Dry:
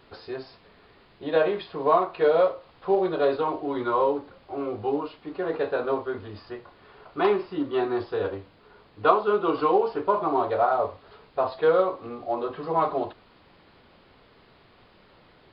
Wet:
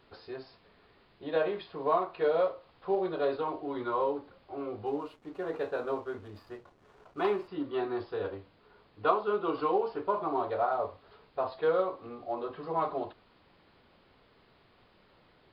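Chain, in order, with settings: 4.86–7.48 backlash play -48.5 dBFS; gain -7 dB

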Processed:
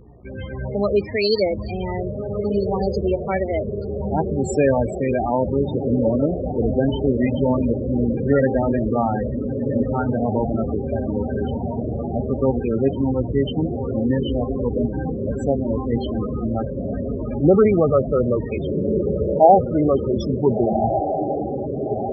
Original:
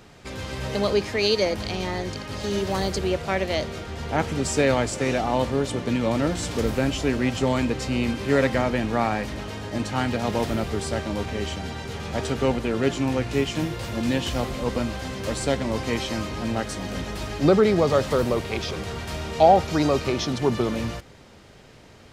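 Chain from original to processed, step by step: diffused feedback echo 1.458 s, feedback 61%, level -5.5 dB; loudest bins only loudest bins 16; buzz 60 Hz, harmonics 20, -54 dBFS -7 dB/oct; gain +3.5 dB

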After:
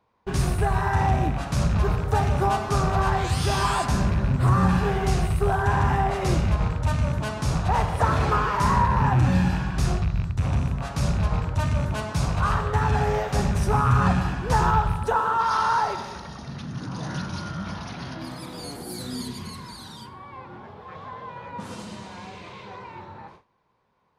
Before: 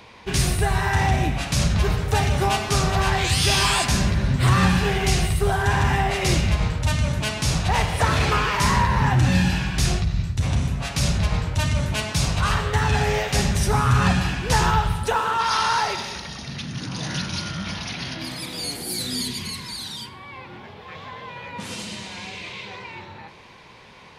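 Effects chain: rattling part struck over -20 dBFS, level -19 dBFS; resonant high shelf 1700 Hz -8.5 dB, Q 1.5; gate with hold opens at -34 dBFS; 4.24–4.69 dynamic EQ 2900 Hz, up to -7 dB, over -39 dBFS, Q 0.73; gain -1.5 dB

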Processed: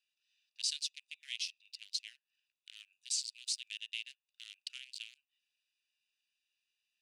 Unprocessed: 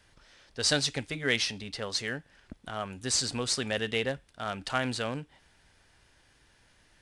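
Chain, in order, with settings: Wiener smoothing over 41 samples; compressor 2.5:1, threshold -44 dBFS, peak gain reduction 14.5 dB; elliptic high-pass 2600 Hz, stop band 80 dB; gain +6 dB

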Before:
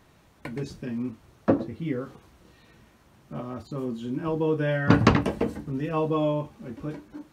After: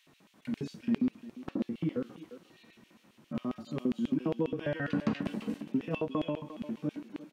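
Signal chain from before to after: 5.59–6.41 transient shaper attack +9 dB, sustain -5 dB; harmonic-percussive split percussive -14 dB; compressor 4:1, threshold -29 dBFS, peak gain reduction 9 dB; LFO high-pass square 7.4 Hz 210–2800 Hz; speakerphone echo 0.35 s, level -12 dB

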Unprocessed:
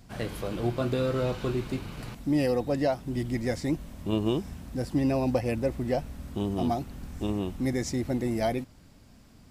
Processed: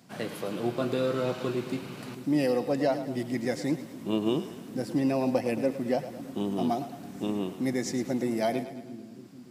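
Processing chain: HPF 150 Hz 24 dB/oct; split-band echo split 330 Hz, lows 0.621 s, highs 0.109 s, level -12 dB

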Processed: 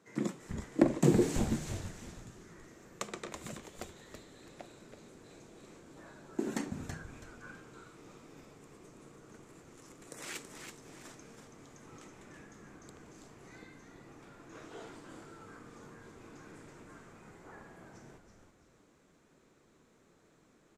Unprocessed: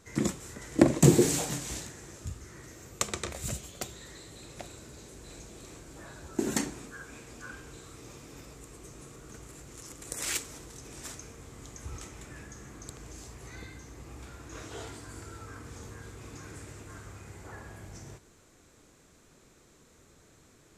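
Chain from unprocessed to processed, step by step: HPF 150 Hz 24 dB/oct; high shelf 3600 Hz -11.5 dB; frequency-shifting echo 0.328 s, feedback 32%, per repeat -130 Hz, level -6.5 dB; gain -4.5 dB

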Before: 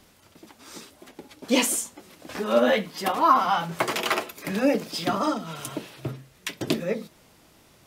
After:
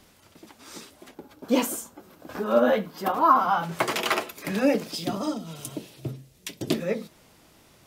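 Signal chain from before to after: 1.14–3.63 spectral gain 1700–12000 Hz -8 dB; 4.95–6.71 bell 1400 Hz -11.5 dB 2 oct

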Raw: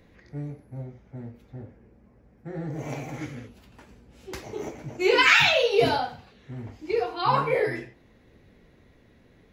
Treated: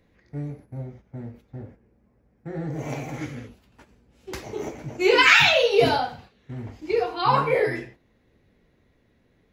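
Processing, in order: gate -48 dBFS, range -9 dB; gain +2.5 dB

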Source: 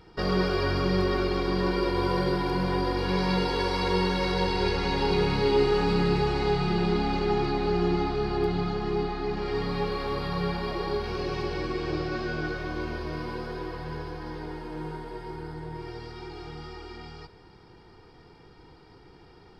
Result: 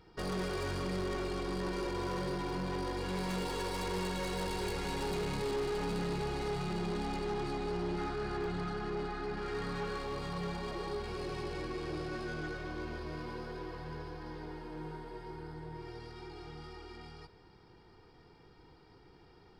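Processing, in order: tracing distortion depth 0.095 ms; 7.98–9.99 bell 1500 Hz +10 dB 0.47 oct; soft clip -24 dBFS, distortion -12 dB; gain -7 dB

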